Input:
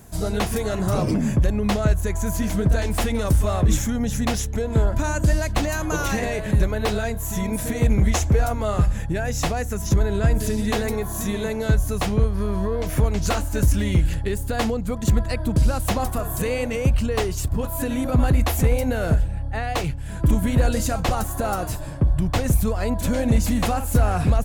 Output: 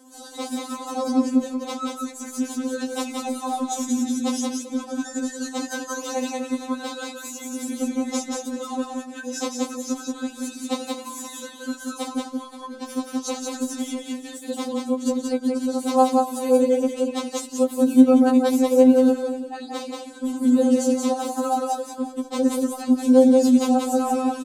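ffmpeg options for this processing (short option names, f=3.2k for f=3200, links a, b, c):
-af "highpass=f=99:w=0.5412,highpass=f=99:w=1.3066,highshelf=f=10k:g=-11.5,bandreject=f=1.9k:w=14,tremolo=f=11:d=0.41,equalizer=f=125:t=o:w=1:g=6,equalizer=f=250:t=o:w=1:g=6,equalizer=f=500:t=o:w=1:g=7,equalizer=f=1k:t=o:w=1:g=6,equalizer=f=2k:t=o:w=1:g=-7,equalizer=f=4k:t=o:w=1:g=5,equalizer=f=8k:t=o:w=1:g=9,aecho=1:1:180|388|523:0.708|0.119|0.15,afftfilt=real='re*3.46*eq(mod(b,12),0)':imag='im*3.46*eq(mod(b,12),0)':win_size=2048:overlap=0.75,volume=-3dB"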